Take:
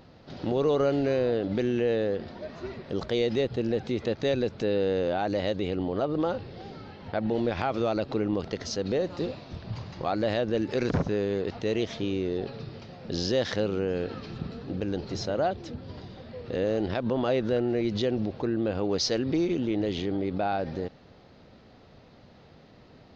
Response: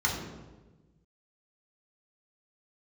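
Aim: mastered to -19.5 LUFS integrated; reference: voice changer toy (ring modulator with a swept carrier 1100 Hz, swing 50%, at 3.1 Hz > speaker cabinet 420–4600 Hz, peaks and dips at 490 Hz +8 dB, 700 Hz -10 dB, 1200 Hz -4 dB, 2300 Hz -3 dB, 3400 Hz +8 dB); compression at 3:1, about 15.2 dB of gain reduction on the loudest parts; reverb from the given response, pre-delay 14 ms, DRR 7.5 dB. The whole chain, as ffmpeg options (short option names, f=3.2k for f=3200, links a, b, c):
-filter_complex "[0:a]acompressor=threshold=-43dB:ratio=3,asplit=2[a][b];[1:a]atrim=start_sample=2205,adelay=14[c];[b][c]afir=irnorm=-1:irlink=0,volume=-17.5dB[d];[a][d]amix=inputs=2:normalize=0,aeval=exprs='val(0)*sin(2*PI*1100*n/s+1100*0.5/3.1*sin(2*PI*3.1*n/s))':c=same,highpass=420,equalizer=f=490:t=q:w=4:g=8,equalizer=f=700:t=q:w=4:g=-10,equalizer=f=1.2k:t=q:w=4:g=-4,equalizer=f=2.3k:t=q:w=4:g=-3,equalizer=f=3.4k:t=q:w=4:g=8,lowpass=f=4.6k:w=0.5412,lowpass=f=4.6k:w=1.3066,volume=25dB"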